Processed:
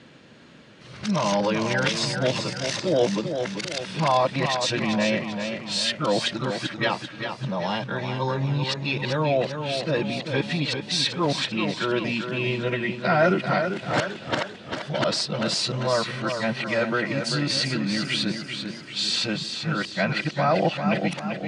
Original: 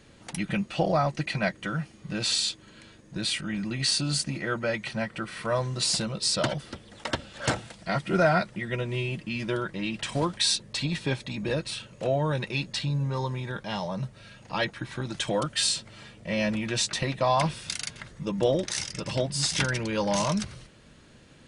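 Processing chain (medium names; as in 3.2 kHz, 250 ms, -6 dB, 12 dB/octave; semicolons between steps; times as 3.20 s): reverse the whole clip; in parallel at -1 dB: peak limiter -21 dBFS, peak gain reduction 11 dB; on the sum: band-pass 150–4800 Hz; modulated delay 392 ms, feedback 48%, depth 58 cents, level -7 dB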